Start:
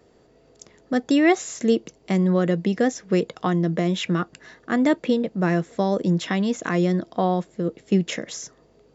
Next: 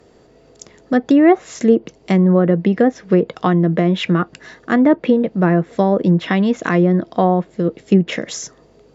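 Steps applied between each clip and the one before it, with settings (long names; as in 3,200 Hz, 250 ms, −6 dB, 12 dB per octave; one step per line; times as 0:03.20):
treble cut that deepens with the level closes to 1,300 Hz, closed at −15.5 dBFS
level +7 dB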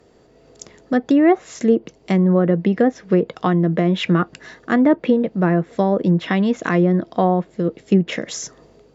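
automatic gain control
level −3.5 dB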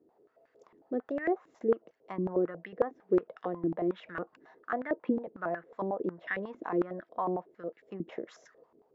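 band-pass on a step sequencer 11 Hz 310–1,700 Hz
level −5 dB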